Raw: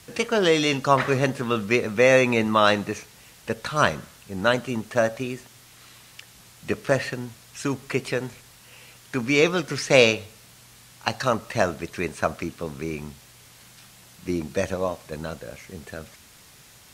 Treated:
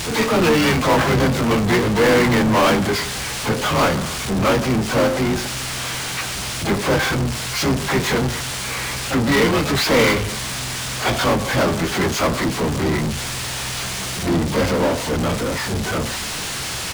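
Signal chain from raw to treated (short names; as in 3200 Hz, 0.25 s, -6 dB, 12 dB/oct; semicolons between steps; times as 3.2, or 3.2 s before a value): inharmonic rescaling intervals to 92%; harmoniser -12 st -6 dB, -7 st -10 dB, +12 st -16 dB; power-law curve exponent 0.35; gain -5 dB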